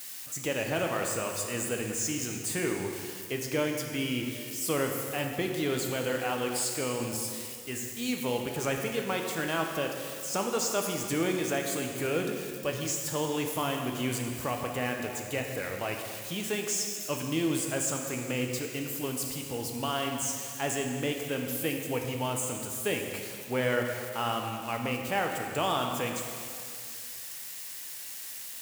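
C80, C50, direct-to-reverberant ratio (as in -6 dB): 5.0 dB, 3.5 dB, 2.0 dB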